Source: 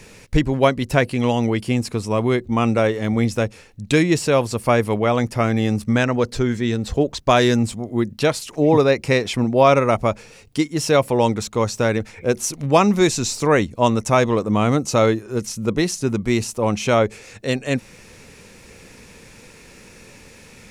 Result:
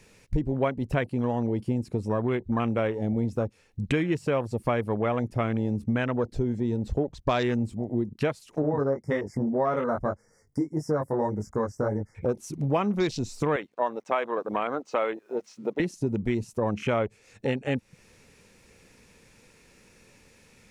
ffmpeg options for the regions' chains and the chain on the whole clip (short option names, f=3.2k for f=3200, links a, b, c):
-filter_complex "[0:a]asettb=1/sr,asplit=3[a][b][c];[a]atrim=end=8.624[d];[b]atrim=start=8.62:end=12.15,asetpts=PTS-STARTPTS,afade=t=in:d=0.004:c=qsin,afade=t=out:st=3.526:d=0.004:c=qsin,asuperstop=centerf=3200:order=20:qfactor=1.2,flanger=delay=19:depth=3.1:speed=1.8[e];[c]atrim=start=12.146[f];[d][e]acrossfade=d=0.004:c1=hsin:c2=qsin[g];[g][f]acrossfade=d=0.004:c1=qsin:c2=hsin,asettb=1/sr,asplit=3[h][i][j];[h]atrim=end=13.564[k];[i]atrim=start=13.56:end=15.8,asetpts=PTS-STARTPTS,afade=t=in:d=0.004:c=qsin,afade=t=out:st=2.236:d=0.004:c=qsin,highpass=520,lowpass=3.7k,acrusher=bits=8:mix=0:aa=0.5[l];[j]atrim=start=15.796[m];[k][l]acrossfade=d=0.004:c1=hsin:c2=qsin[n];[n][m]acrossfade=d=0.004:c1=qsin:c2=hsin,afwtdn=0.0447,acompressor=threshold=-31dB:ratio=3,volume=4dB"